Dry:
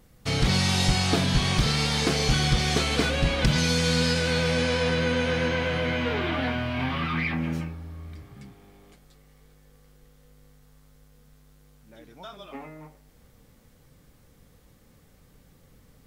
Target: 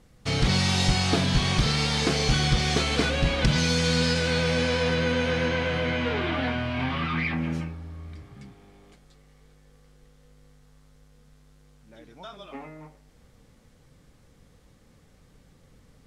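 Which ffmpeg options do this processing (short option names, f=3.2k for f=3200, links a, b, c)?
-af "lowpass=9k"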